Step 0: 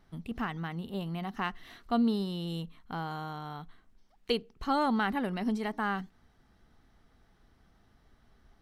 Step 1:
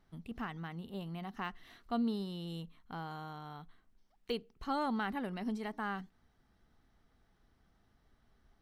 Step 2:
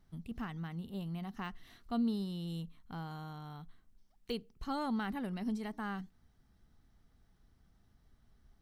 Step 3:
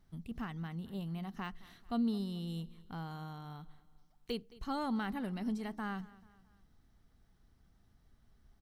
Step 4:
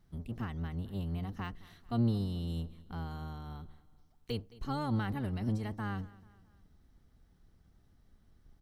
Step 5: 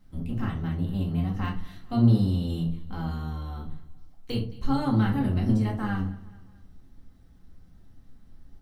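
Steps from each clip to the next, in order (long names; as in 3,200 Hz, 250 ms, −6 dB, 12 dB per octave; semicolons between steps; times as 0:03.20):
de-essing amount 95%; level −6.5 dB
bass and treble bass +8 dB, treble +6 dB; level −3.5 dB
repeating echo 218 ms, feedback 46%, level −20.5 dB
sub-octave generator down 1 octave, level +2 dB
rectangular room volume 210 cubic metres, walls furnished, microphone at 2.1 metres; level +3 dB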